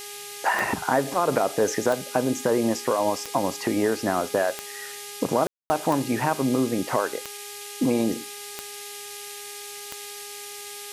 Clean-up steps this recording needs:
click removal
hum removal 409.6 Hz, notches 37
ambience match 0:05.47–0:05.70
noise reduction from a noise print 30 dB

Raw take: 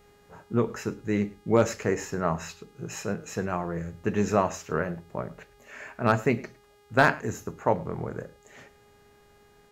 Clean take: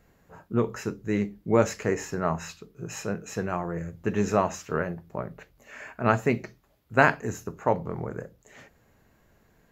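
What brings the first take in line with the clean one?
clipped peaks rebuilt −8 dBFS
hum removal 410.7 Hz, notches 30
echo removal 106 ms −21 dB

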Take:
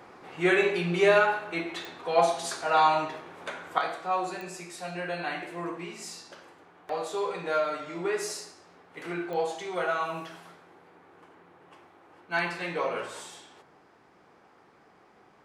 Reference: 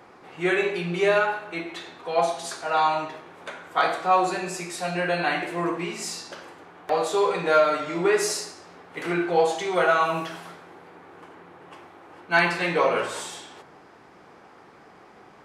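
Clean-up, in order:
click removal
level correction +8.5 dB, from 0:03.78

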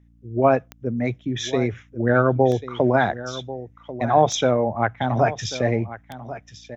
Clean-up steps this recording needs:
click removal
hum removal 57.8 Hz, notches 5
echo removal 1,091 ms −14.5 dB

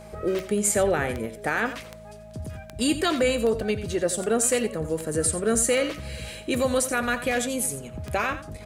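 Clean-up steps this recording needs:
click removal
hum removal 54.5 Hz, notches 4
notch filter 630 Hz, Q 30
echo removal 87 ms −12.5 dB

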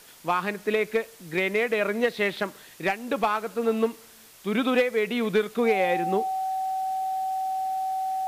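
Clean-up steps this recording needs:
notch filter 760 Hz, Q 30
broadband denoise 22 dB, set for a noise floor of −49 dBFS

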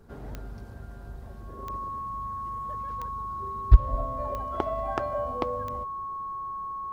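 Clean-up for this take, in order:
click removal
notch filter 1,100 Hz, Q 30

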